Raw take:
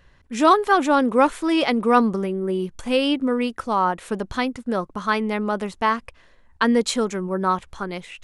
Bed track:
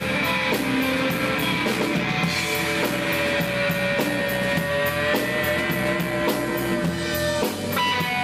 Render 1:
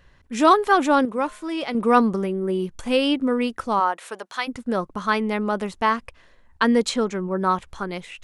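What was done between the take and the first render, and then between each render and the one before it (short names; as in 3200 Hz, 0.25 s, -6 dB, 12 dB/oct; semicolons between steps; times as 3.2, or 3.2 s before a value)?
1.05–1.75 resonator 210 Hz, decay 0.57 s, harmonics odd; 3.79–4.47 HPF 430 Hz -> 930 Hz; 6.89–7.38 air absorption 68 m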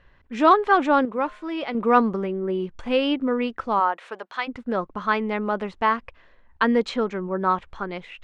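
LPF 3000 Hz 12 dB/oct; bell 120 Hz -4 dB 2.5 oct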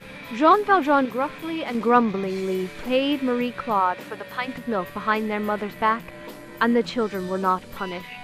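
add bed track -16.5 dB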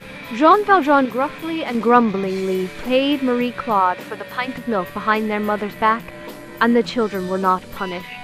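gain +4.5 dB; limiter -2 dBFS, peak gain reduction 1 dB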